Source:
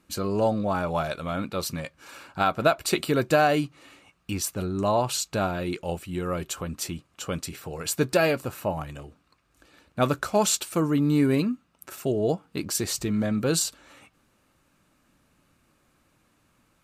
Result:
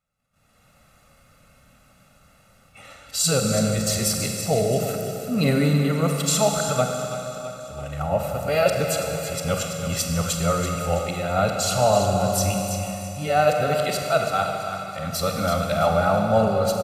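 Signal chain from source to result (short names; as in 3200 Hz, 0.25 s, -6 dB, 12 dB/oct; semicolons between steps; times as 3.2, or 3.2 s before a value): whole clip reversed; comb 1.5 ms, depth 77%; on a send: feedback echo 0.331 s, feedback 43%, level -10 dB; on the sum: AGC gain up to 13.5 dB; gate -59 dBFS, range -12 dB; Schroeder reverb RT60 2.9 s, combs from 32 ms, DRR 2.5 dB; gain -7.5 dB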